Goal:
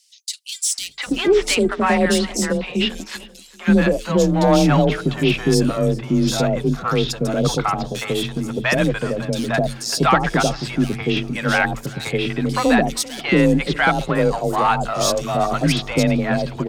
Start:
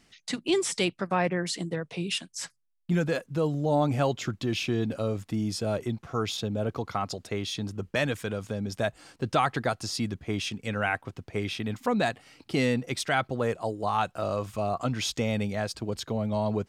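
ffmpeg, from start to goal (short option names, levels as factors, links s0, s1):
-filter_complex "[0:a]bandreject=f=102.6:t=h:w=4,bandreject=f=205.2:t=h:w=4,bandreject=f=307.8:t=h:w=4,bandreject=f=410.4:t=h:w=4,asplit=2[s0][s1];[s1]aeval=exprs='0.0841*(abs(mod(val(0)/0.0841+3,4)-2)-1)':c=same,volume=0.316[s2];[s0][s2]amix=inputs=2:normalize=0,aeval=exprs='0.224*(cos(1*acos(clip(val(0)/0.224,-1,1)))-cos(1*PI/2))+0.00891*(cos(8*acos(clip(val(0)/0.224,-1,1)))-cos(8*PI/2))':c=same,acrossover=split=680|3700[s3][s4][s5];[s4]adelay=700[s6];[s3]adelay=780[s7];[s7][s6][s5]amix=inputs=3:normalize=0,afreqshift=27,asplit=2[s8][s9];[s9]aecho=0:1:391|782|1173:0.0891|0.0339|0.0129[s10];[s8][s10]amix=inputs=2:normalize=0,acontrast=31,volume=1.68"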